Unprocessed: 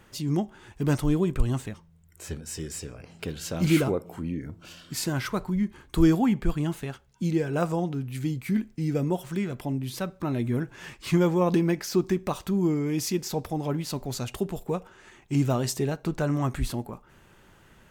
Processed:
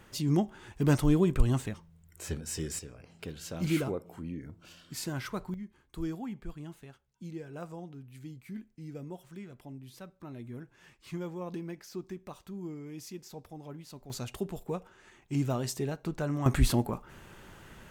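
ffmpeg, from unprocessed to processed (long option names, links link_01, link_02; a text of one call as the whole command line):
ffmpeg -i in.wav -af "asetnsamples=nb_out_samples=441:pad=0,asendcmd='2.79 volume volume -7.5dB;5.54 volume volume -16dB;14.1 volume volume -6dB;16.46 volume volume 4.5dB',volume=-0.5dB" out.wav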